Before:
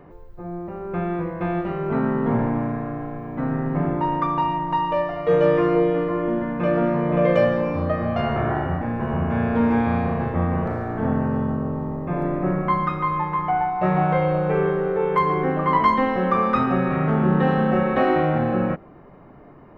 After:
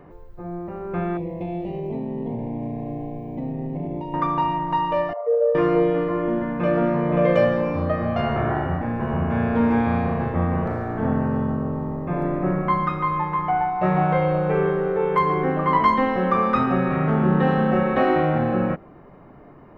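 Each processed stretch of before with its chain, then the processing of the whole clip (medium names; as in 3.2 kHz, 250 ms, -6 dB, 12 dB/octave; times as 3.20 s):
1.17–4.14 s: compression, threshold -24 dBFS + Butterworth band-stop 1.4 kHz, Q 0.86
5.13–5.55 s: resonances exaggerated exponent 2 + brick-wall FIR high-pass 450 Hz
whole clip: none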